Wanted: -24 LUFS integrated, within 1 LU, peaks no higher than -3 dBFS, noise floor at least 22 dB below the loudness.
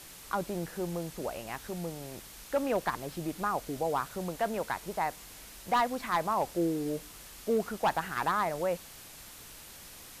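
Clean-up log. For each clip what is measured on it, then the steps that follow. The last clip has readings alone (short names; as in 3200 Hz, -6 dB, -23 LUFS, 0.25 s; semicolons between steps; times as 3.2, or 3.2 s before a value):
clipped 0.4%; flat tops at -21.0 dBFS; noise floor -50 dBFS; noise floor target -55 dBFS; loudness -33.0 LUFS; peak -21.0 dBFS; loudness target -24.0 LUFS
-> clip repair -21 dBFS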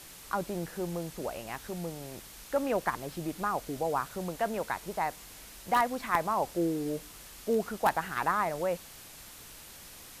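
clipped 0.0%; noise floor -50 dBFS; noise floor target -55 dBFS
-> denoiser 6 dB, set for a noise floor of -50 dBFS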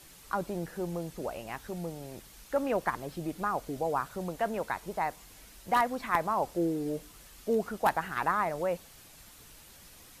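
noise floor -54 dBFS; noise floor target -55 dBFS
-> denoiser 6 dB, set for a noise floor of -54 dBFS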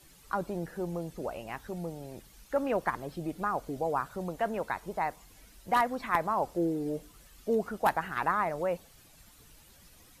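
noise floor -58 dBFS; loudness -32.5 LUFS; peak -12.0 dBFS; loudness target -24.0 LUFS
-> gain +8.5 dB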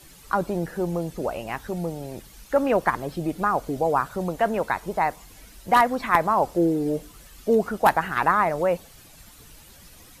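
loudness -24.0 LUFS; peak -3.5 dBFS; noise floor -49 dBFS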